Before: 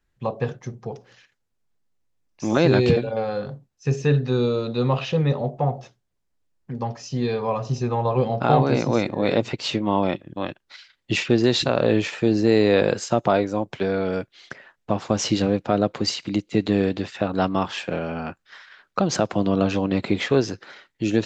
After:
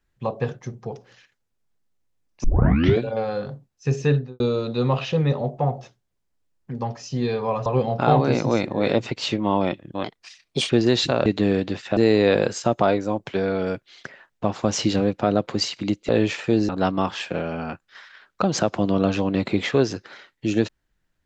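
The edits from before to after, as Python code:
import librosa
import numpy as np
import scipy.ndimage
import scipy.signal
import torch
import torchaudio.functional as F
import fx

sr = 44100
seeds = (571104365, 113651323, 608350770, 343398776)

y = fx.studio_fade_out(x, sr, start_s=4.08, length_s=0.32)
y = fx.edit(y, sr, fx.tape_start(start_s=2.44, length_s=0.56),
    fx.cut(start_s=7.66, length_s=0.42),
    fx.speed_span(start_s=10.46, length_s=0.81, speed=1.23),
    fx.swap(start_s=11.83, length_s=0.6, other_s=16.55, other_length_s=0.71), tone=tone)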